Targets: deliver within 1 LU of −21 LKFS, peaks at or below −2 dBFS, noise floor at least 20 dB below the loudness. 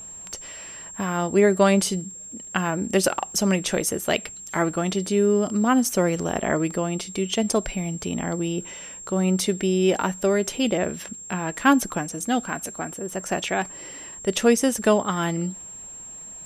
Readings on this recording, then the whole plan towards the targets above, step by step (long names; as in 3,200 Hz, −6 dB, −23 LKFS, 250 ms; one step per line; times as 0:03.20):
crackle rate 23 per second; interfering tone 7,500 Hz; level of the tone −37 dBFS; integrated loudness −23.5 LKFS; sample peak −5.5 dBFS; target loudness −21.0 LKFS
→ click removal
notch filter 7,500 Hz, Q 30
level +2.5 dB